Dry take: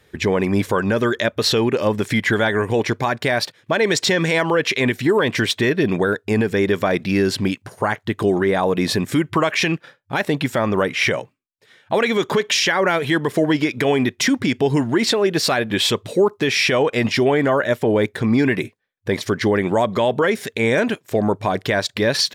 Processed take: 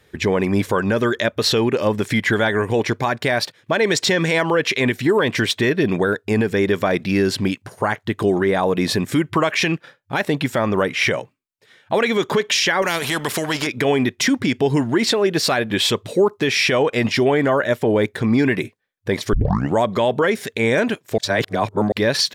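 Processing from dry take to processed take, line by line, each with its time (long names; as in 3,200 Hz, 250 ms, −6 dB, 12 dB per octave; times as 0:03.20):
0:12.82–0:13.67: every bin compressed towards the loudest bin 2 to 1
0:19.33: tape start 0.42 s
0:21.18–0:21.92: reverse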